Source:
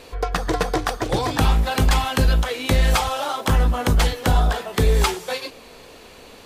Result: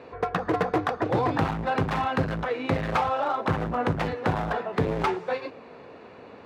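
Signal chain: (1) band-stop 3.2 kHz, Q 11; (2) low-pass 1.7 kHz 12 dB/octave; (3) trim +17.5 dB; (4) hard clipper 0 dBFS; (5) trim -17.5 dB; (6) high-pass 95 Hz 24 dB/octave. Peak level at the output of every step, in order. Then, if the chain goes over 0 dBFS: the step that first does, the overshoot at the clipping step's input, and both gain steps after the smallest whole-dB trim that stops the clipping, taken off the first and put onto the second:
-8.5 dBFS, -9.0 dBFS, +8.5 dBFS, 0.0 dBFS, -17.5 dBFS, -11.0 dBFS; step 3, 8.5 dB; step 3 +8.5 dB, step 5 -8.5 dB

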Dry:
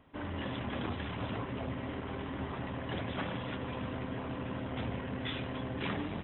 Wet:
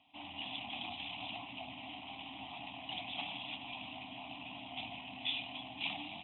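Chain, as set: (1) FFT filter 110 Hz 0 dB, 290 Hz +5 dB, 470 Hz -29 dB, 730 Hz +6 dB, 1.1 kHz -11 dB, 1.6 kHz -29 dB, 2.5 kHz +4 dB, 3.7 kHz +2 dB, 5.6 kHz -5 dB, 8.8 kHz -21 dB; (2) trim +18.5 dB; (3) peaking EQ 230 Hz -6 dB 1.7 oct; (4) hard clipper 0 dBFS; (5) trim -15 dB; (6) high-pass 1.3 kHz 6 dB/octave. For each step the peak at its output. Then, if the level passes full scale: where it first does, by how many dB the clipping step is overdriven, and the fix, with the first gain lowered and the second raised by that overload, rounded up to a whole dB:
-23.0 dBFS, -4.5 dBFS, -5.5 dBFS, -5.5 dBFS, -20.5 dBFS, -24.0 dBFS; nothing clips

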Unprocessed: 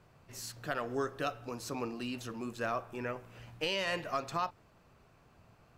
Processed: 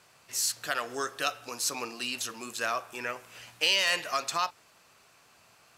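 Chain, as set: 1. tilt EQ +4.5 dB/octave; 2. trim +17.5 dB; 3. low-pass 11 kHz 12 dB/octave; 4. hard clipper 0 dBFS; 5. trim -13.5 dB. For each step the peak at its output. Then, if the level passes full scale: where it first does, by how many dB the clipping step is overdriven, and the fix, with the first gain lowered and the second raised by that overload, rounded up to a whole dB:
-13.0 dBFS, +4.5 dBFS, +4.0 dBFS, 0.0 dBFS, -13.5 dBFS; step 2, 4.0 dB; step 2 +13.5 dB, step 5 -9.5 dB

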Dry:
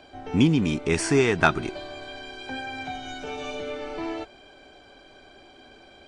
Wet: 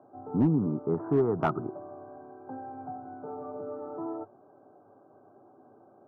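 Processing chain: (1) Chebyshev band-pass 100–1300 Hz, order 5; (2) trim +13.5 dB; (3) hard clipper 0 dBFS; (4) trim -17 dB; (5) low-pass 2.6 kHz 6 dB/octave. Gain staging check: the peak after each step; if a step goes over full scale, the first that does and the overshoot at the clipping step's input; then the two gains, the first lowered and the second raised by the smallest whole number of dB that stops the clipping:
-7.5 dBFS, +6.0 dBFS, 0.0 dBFS, -17.0 dBFS, -17.0 dBFS; step 2, 6.0 dB; step 2 +7.5 dB, step 4 -11 dB

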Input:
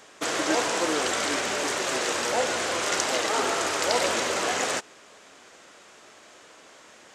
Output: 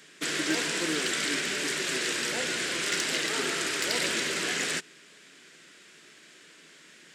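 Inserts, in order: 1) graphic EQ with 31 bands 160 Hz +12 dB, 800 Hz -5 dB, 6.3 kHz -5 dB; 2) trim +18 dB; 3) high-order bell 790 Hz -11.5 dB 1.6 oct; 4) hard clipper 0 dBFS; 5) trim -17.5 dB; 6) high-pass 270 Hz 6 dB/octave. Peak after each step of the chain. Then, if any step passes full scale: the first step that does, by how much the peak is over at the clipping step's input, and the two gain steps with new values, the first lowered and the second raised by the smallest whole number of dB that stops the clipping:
-8.0 dBFS, +10.0 dBFS, +10.0 dBFS, 0.0 dBFS, -17.5 dBFS, -16.0 dBFS; step 2, 10.0 dB; step 2 +8 dB, step 5 -7.5 dB

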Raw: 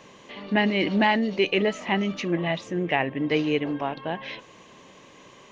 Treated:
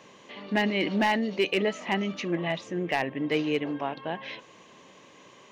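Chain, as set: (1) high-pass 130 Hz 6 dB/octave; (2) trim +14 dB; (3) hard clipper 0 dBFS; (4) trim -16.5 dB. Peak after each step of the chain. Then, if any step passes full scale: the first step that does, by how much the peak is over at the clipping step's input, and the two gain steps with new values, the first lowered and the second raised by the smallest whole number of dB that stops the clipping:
-7.5 dBFS, +6.5 dBFS, 0.0 dBFS, -16.5 dBFS; step 2, 6.5 dB; step 2 +7 dB, step 4 -9.5 dB

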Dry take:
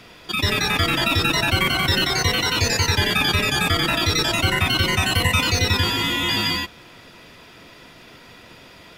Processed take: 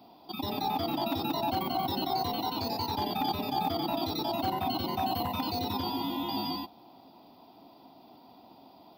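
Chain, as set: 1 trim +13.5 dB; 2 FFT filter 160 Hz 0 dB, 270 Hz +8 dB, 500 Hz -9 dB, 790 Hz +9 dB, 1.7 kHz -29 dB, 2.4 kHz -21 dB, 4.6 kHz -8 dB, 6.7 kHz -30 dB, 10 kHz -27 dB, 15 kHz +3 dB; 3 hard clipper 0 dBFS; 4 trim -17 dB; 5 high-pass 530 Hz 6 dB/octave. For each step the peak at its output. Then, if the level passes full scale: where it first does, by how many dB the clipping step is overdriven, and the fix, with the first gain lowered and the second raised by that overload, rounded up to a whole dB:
+8.5 dBFS, +5.0 dBFS, 0.0 dBFS, -17.0 dBFS, -19.0 dBFS; step 1, 5.0 dB; step 1 +8.5 dB, step 4 -12 dB

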